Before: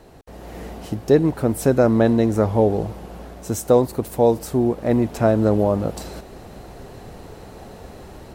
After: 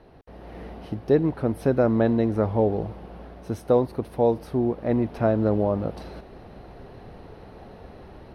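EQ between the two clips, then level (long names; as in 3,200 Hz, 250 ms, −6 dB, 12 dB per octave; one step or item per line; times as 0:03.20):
moving average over 6 samples
−4.5 dB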